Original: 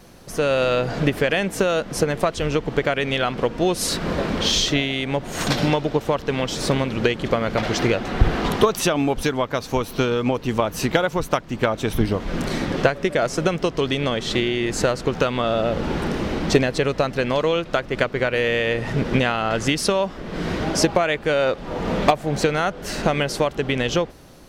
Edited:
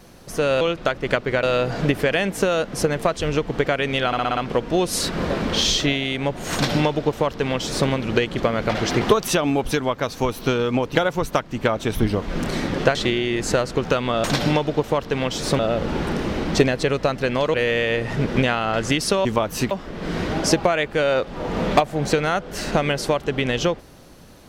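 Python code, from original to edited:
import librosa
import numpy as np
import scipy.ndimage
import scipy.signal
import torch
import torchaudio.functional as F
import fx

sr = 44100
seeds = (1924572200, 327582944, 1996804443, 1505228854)

y = fx.edit(x, sr, fx.stutter(start_s=3.25, slice_s=0.06, count=6),
    fx.duplicate(start_s=5.41, length_s=1.35, to_s=15.54),
    fx.cut(start_s=7.89, length_s=0.64),
    fx.move(start_s=10.47, length_s=0.46, to_s=20.02),
    fx.cut(start_s=12.93, length_s=1.32),
    fx.move(start_s=17.49, length_s=0.82, to_s=0.61), tone=tone)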